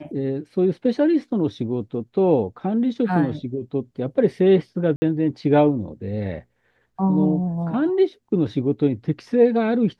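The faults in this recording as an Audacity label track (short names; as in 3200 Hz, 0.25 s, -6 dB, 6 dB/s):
4.960000	5.020000	gap 60 ms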